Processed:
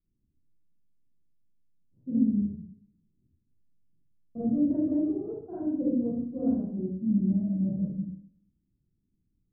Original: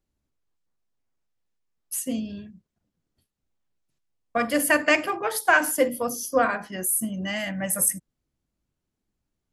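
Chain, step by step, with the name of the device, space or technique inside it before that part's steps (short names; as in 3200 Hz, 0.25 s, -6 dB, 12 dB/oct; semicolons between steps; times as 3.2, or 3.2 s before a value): next room (LPF 310 Hz 24 dB/oct; reverb RT60 0.70 s, pre-delay 29 ms, DRR -9.5 dB); gain -4 dB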